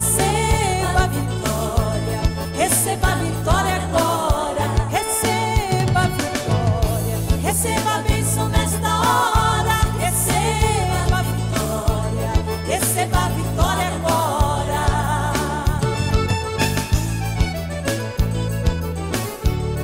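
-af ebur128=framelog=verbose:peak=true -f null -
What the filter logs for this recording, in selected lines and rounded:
Integrated loudness:
  I:         -19.8 LUFS
  Threshold: -29.8 LUFS
Loudness range:
  LRA:         3.1 LU
  Threshold: -39.7 LUFS
  LRA low:   -21.3 LUFS
  LRA high:  -18.2 LUFS
True peak:
  Peak:       -5.5 dBFS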